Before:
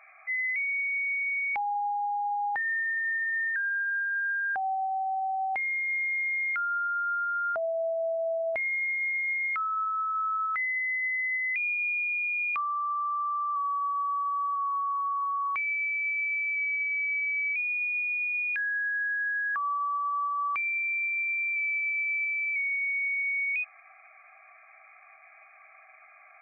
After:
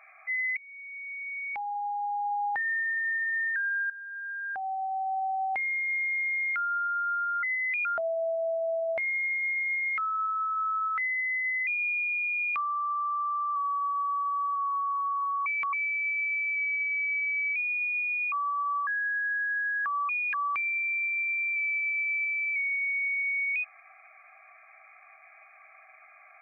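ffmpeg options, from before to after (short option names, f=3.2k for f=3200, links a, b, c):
-filter_complex "[0:a]asplit=12[a][b][c][d][e][f][g][h][i][j][k][l];[a]atrim=end=0.57,asetpts=PTS-STARTPTS,afade=t=out:st=0.566:d=0.004:c=hsin:silence=0.0668344[m];[b]atrim=start=0.57:end=3.9,asetpts=PTS-STARTPTS,afade=t=in:d=1.79:silence=0.0668344,afade=t=out:st=3.326:d=0.004:c=hsin:silence=0.177828[n];[c]atrim=start=3.9:end=7.432,asetpts=PTS-STARTPTS,afade=t=in:d=1.28:silence=0.177828[o];[d]atrim=start=11.248:end=11.672[p];[e]atrim=start=7.428:end=11.252[q];[f]atrim=start=11.668:end=15.462[r];[g]atrim=start=15.458:end=15.732,asetpts=PTS-STARTPTS,areverse[s];[h]atrim=start=15.728:end=18.322[t];[i]atrim=start=19.788:end=20.342[u];[j]atrim=start=18.568:end=19.792[v];[k]atrim=start=18.318:end=18.572[w];[l]atrim=start=20.338[x];[m][n][o]concat=n=3:v=0:a=1[y];[y][p]acrossfade=d=0.004:c1=hsin:c2=hsin[z];[z][q]acrossfade=d=0.004:c1=hsin:c2=hsin[aa];[aa][r]acrossfade=d=0.004:c1=hsin:c2=hsin[ab];[ab][s]acrossfade=d=0.004:c1=hsin:c2=hsin[ac];[ac][t]acrossfade=d=0.004:c1=hsin:c2=hsin[ad];[ad][u]acrossfade=d=0.004:c1=hsin:c2=hsin[ae];[ae][v]acrossfade=d=0.004:c1=hsin:c2=hsin[af];[af][w]acrossfade=d=0.004:c1=hsin:c2=hsin[ag];[ag][x]acrossfade=d=0.004:c1=hsin:c2=hsin"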